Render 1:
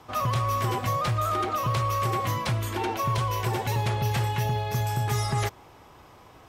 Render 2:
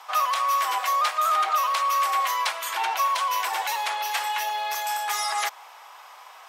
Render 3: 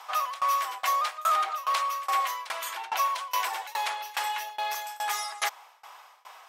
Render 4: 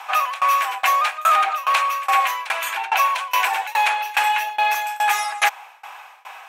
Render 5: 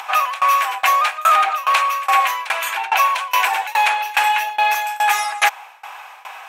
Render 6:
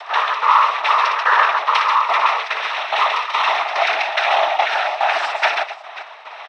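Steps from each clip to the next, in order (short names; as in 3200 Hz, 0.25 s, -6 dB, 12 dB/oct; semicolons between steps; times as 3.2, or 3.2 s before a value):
in parallel at 0 dB: limiter -25.5 dBFS, peak gain reduction 8 dB; on the sum: inverse Chebyshev high-pass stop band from 170 Hz, stop band 70 dB; gain +2.5 dB
tremolo saw down 2.4 Hz, depth 95%
thirty-one-band EQ 800 Hz +7 dB, 1600 Hz +7 dB, 2500 Hz +11 dB, 5000 Hz -5 dB; gain +6 dB
upward compressor, threshold -33 dBFS; gain +2.5 dB
tapped delay 60/137/253/537 ms -5.5/-4/-15/-15.5 dB; downsampling 11025 Hz; noise vocoder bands 12; gain -1.5 dB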